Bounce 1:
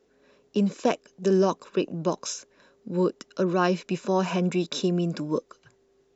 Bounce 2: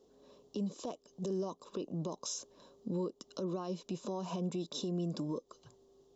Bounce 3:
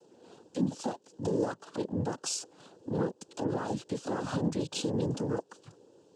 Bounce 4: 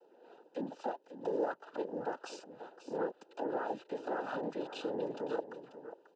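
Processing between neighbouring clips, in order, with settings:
downward compressor 6 to 1, threshold −33 dBFS, peak gain reduction 15.5 dB; brickwall limiter −28.5 dBFS, peak gain reduction 8 dB; flat-topped bell 1,900 Hz −14.5 dB 1.1 octaves
cochlear-implant simulation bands 8; level +6 dB
band-pass filter 480–2,100 Hz; notch comb filter 1,100 Hz; single-tap delay 539 ms −12 dB; level +1 dB

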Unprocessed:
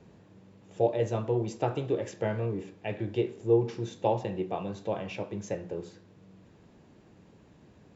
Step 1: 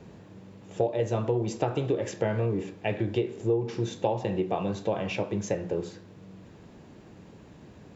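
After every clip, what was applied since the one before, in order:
downward compressor 5 to 1, threshold −30 dBFS, peak gain reduction 11.5 dB
level +7 dB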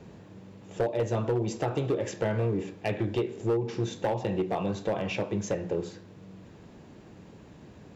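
hard clipping −21 dBFS, distortion −16 dB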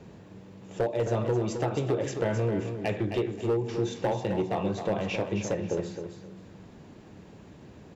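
repeating echo 264 ms, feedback 25%, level −8 dB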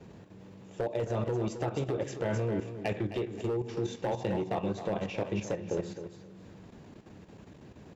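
output level in coarse steps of 10 dB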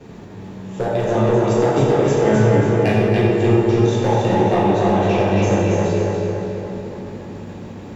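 feedback echo with a low-pass in the loop 285 ms, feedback 61%, low-pass 4,000 Hz, level −3 dB
dense smooth reverb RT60 2 s, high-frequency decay 0.65×, DRR −5 dB
level +8.5 dB

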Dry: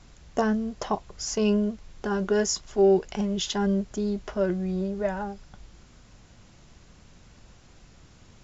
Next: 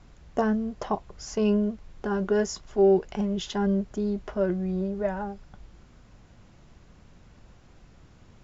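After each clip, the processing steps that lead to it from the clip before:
high-shelf EQ 3,200 Hz −10.5 dB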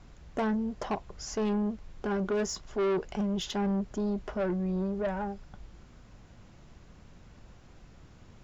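soft clipping −25 dBFS, distortion −9 dB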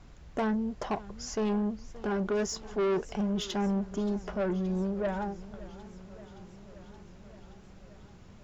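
feedback echo with a swinging delay time 573 ms, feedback 74%, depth 129 cents, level −19 dB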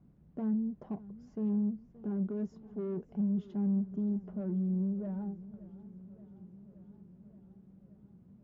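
resonant band-pass 190 Hz, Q 2

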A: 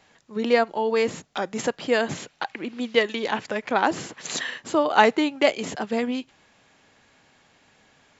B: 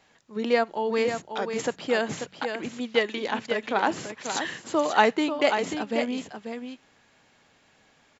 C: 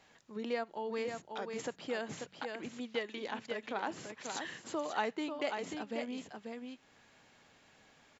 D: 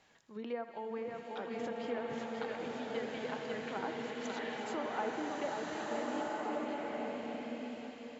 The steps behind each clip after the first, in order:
hum removal 46.63 Hz, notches 4; on a send: single-tap delay 539 ms −7.5 dB; on the sum: level −3 dB
downward compressor 1.5 to 1, threshold −50 dBFS, peak gain reduction 13 dB; level −2.5 dB
feedback echo with a high-pass in the loop 81 ms, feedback 72%, level −12 dB; treble cut that deepens with the level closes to 1,400 Hz, closed at −32.5 dBFS; slow-attack reverb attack 1,490 ms, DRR −2.5 dB; level −3 dB

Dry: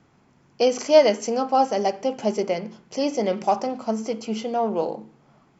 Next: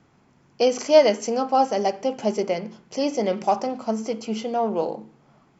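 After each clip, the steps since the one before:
no processing that can be heard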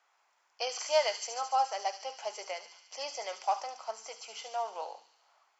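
high-pass filter 740 Hz 24 dB per octave
on a send: delay with a high-pass on its return 72 ms, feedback 72%, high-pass 4,300 Hz, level −4 dB
on the sum: level −6 dB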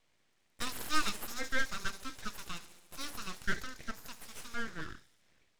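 full-wave rectification

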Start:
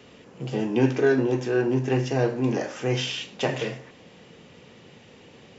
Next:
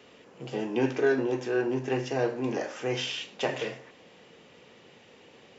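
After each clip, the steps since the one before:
bass and treble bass −9 dB, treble −2 dB
level −2.5 dB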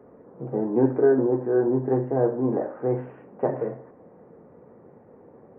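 Gaussian smoothing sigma 8 samples
level +7 dB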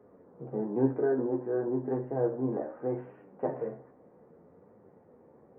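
flanger 0.63 Hz, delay 9.5 ms, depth 5.9 ms, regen +49%
level −3.5 dB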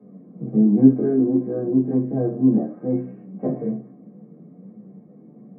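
convolution reverb RT60 0.15 s, pre-delay 3 ms, DRR −2.5 dB
level −11 dB

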